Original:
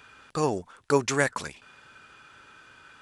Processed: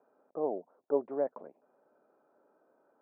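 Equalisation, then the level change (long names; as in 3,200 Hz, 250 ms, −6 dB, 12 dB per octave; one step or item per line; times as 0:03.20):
high-pass filter 230 Hz 24 dB per octave
transistor ladder low-pass 730 Hz, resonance 55%
0.0 dB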